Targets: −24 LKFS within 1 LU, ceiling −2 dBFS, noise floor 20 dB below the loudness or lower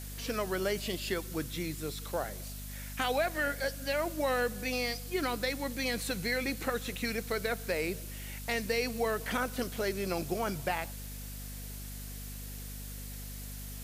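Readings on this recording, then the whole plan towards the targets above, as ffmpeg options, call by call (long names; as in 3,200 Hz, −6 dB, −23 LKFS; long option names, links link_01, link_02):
mains hum 50 Hz; hum harmonics up to 250 Hz; level of the hum −41 dBFS; background noise floor −42 dBFS; target noise floor −55 dBFS; integrated loudness −34.5 LKFS; sample peak −16.5 dBFS; target loudness −24.0 LKFS
→ -af "bandreject=frequency=50:width_type=h:width=6,bandreject=frequency=100:width_type=h:width=6,bandreject=frequency=150:width_type=h:width=6,bandreject=frequency=200:width_type=h:width=6,bandreject=frequency=250:width_type=h:width=6"
-af "afftdn=noise_reduction=13:noise_floor=-42"
-af "volume=10.5dB"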